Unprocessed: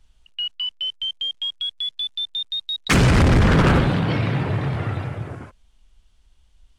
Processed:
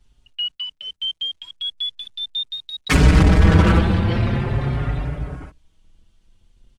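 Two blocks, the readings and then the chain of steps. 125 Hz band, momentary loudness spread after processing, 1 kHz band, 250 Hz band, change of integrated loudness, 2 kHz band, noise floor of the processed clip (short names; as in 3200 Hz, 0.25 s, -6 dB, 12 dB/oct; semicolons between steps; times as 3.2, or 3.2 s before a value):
+2.0 dB, 15 LU, -1.0 dB, +1.0 dB, +1.0 dB, -1.0 dB, -64 dBFS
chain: octaver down 1 oct, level +1 dB; endless flanger 5.2 ms +0.43 Hz; gain +2 dB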